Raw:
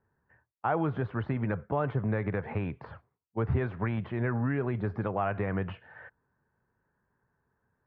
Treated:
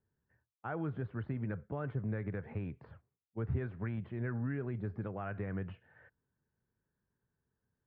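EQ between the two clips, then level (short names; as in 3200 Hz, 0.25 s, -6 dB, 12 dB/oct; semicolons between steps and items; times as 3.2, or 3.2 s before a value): bell 940 Hz -9 dB 1.7 oct; high shelf 2900 Hz -9.5 dB; dynamic EQ 1500 Hz, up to +6 dB, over -50 dBFS, Q 2.2; -6.0 dB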